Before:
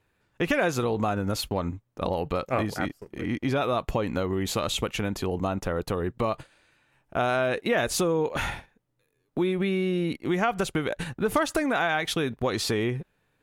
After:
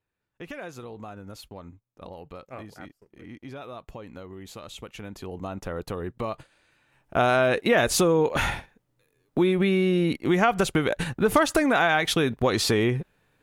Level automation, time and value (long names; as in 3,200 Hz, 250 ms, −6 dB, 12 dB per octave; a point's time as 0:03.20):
0:04.66 −14 dB
0:05.73 −4 dB
0:06.39 −4 dB
0:07.20 +4 dB